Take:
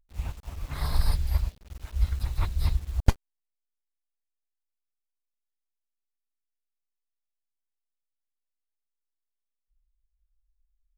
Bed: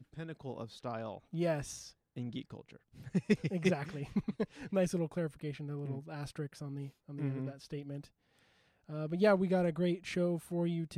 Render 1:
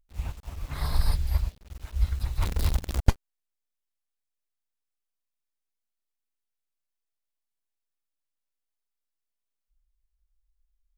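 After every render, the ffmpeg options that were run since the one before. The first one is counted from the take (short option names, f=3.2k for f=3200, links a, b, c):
-filter_complex "[0:a]asplit=3[a][b][c];[a]afade=t=out:st=2.41:d=0.02[d];[b]acrusher=bits=6:dc=4:mix=0:aa=0.000001,afade=t=in:st=2.41:d=0.02,afade=t=out:st=2.99:d=0.02[e];[c]afade=t=in:st=2.99:d=0.02[f];[d][e][f]amix=inputs=3:normalize=0"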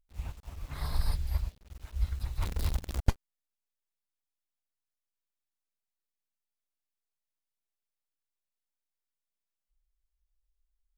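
-af "volume=-5.5dB"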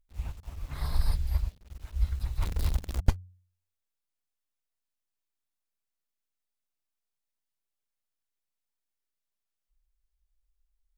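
-af "lowshelf=f=140:g=3.5,bandreject=f=90.71:t=h:w=4,bandreject=f=181.42:t=h:w=4"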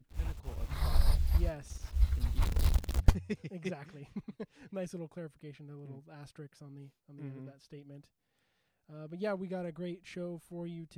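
-filter_complex "[1:a]volume=-8dB[a];[0:a][a]amix=inputs=2:normalize=0"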